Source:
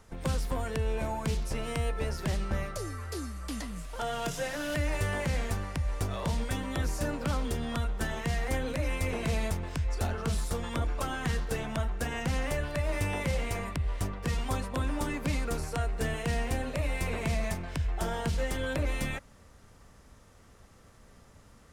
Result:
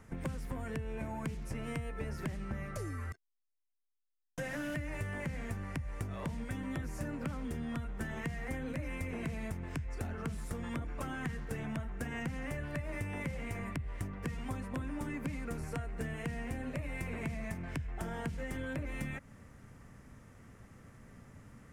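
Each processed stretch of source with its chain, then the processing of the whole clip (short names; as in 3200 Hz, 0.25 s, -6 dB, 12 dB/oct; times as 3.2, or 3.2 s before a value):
3.12–4.38 Bessel low-pass 5500 Hz + metallic resonator 320 Hz, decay 0.42 s, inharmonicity 0.03 + core saturation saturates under 1200 Hz
whole clip: graphic EQ 125/250/2000/4000 Hz +9/+7/+7/-7 dB; compressor, threshold -32 dBFS; gain -3.5 dB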